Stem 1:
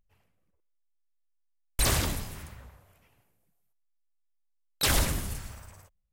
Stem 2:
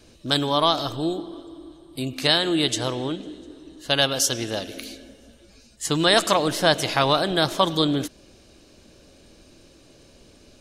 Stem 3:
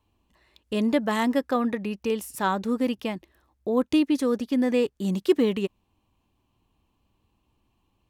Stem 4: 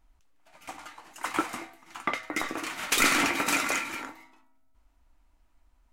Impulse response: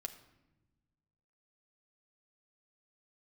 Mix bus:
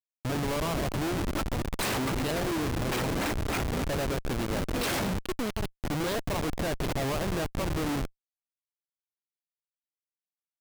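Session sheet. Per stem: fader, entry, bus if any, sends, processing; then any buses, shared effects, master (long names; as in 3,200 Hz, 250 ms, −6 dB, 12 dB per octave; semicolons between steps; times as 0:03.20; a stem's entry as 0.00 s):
−0.5 dB, 0.00 s, no bus, no send, Bessel high-pass filter 160 Hz, order 4
−1.5 dB, 0.00 s, bus A, no send, parametric band 4,400 Hz −9 dB 1.6 octaves; leveller curve on the samples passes 2; auto-filter low-pass saw up 1.3 Hz 500–6,000 Hz
−9.5 dB, 0.00 s, bus A, no send, flat-topped bell 3,600 Hz +15.5 dB
+1.5 dB, 0.00 s, no bus, no send, Bessel high-pass filter 530 Hz, order 4; sample-and-hold swept by an LFO 20×, swing 160% 3.3 Hz
bus A: 0.0 dB, downward compressor 6 to 1, threshold −26 dBFS, peak gain reduction 16 dB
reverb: not used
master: comparator with hysteresis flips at −27 dBFS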